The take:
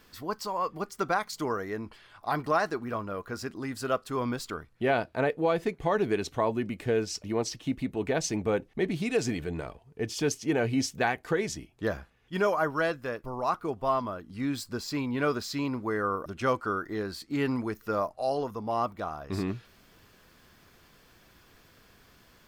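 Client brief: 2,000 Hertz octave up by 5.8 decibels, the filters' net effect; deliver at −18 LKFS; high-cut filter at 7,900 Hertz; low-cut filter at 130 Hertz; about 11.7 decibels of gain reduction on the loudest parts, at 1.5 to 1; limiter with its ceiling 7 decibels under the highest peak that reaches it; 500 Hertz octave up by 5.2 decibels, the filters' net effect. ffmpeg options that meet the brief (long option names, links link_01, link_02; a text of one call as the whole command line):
ffmpeg -i in.wav -af "highpass=130,lowpass=7900,equalizer=frequency=500:width_type=o:gain=6,equalizer=frequency=2000:width_type=o:gain=7.5,acompressor=threshold=-51dB:ratio=1.5,volume=21dB,alimiter=limit=-5.5dB:level=0:latency=1" out.wav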